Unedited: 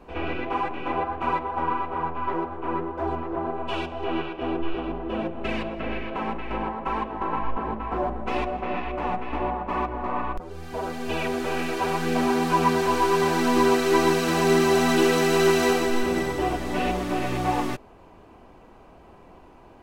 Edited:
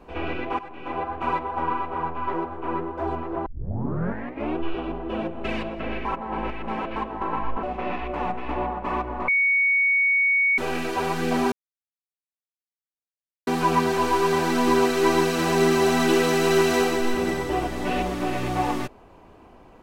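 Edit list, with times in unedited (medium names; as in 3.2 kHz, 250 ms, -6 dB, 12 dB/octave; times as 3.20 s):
0.59–1.38 s: fade in equal-power, from -16 dB
3.46 s: tape start 1.11 s
6.05–6.96 s: reverse
7.63–8.47 s: delete
10.12–11.42 s: bleep 2.23 kHz -17 dBFS
12.36 s: insert silence 1.95 s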